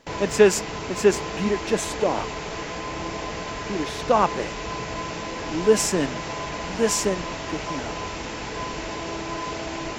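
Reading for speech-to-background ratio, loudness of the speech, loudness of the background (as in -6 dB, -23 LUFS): 7.5 dB, -23.5 LUFS, -31.0 LUFS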